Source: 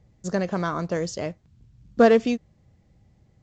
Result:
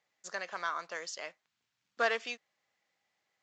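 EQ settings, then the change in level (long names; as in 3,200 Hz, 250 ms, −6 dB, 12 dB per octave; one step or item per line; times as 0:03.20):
high-pass filter 1,400 Hz 12 dB per octave
high-shelf EQ 5,300 Hz −9.5 dB
0.0 dB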